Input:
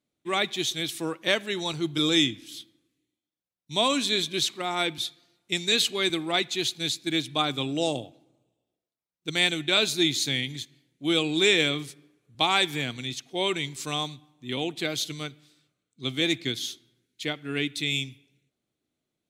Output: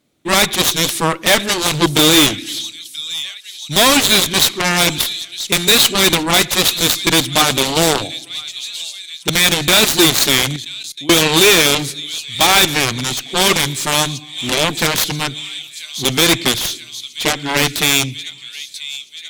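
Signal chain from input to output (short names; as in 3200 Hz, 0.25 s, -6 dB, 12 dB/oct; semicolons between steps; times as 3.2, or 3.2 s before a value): on a send: thin delay 0.983 s, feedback 62%, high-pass 3500 Hz, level -12 dB; 10.56–11.1 on the sum: level quantiser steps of 23 dB; sine folder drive 5 dB, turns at -8 dBFS; added harmonics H 6 -27 dB, 7 -8 dB, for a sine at -7.5 dBFS; gain +4 dB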